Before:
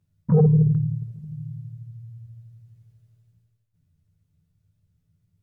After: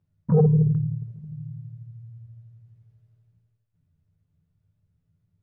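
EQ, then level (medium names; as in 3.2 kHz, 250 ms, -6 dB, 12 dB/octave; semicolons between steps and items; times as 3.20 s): low-pass 1.2 kHz 6 dB/octave; bass shelf 360 Hz -5.5 dB; +3.0 dB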